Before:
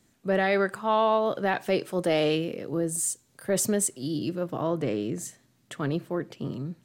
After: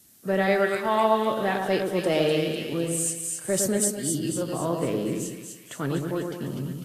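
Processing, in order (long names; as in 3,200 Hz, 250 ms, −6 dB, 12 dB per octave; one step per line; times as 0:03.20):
background noise violet −52 dBFS
echo with a time of its own for lows and highs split 1,700 Hz, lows 109 ms, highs 250 ms, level −4 dB
Ogg Vorbis 32 kbit/s 44,100 Hz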